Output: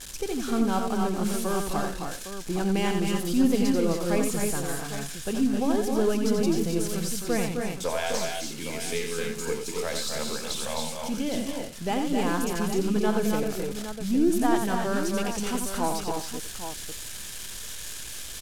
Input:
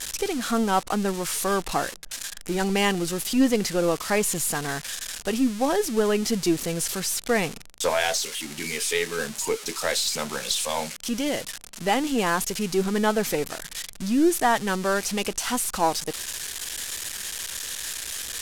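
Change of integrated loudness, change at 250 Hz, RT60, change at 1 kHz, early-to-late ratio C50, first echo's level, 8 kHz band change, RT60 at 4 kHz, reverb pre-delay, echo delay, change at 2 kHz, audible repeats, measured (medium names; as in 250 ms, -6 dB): -2.5 dB, +0.5 dB, no reverb, -4.5 dB, no reverb, -6.0 dB, -6.0 dB, no reverb, no reverb, 88 ms, -6.5 dB, 4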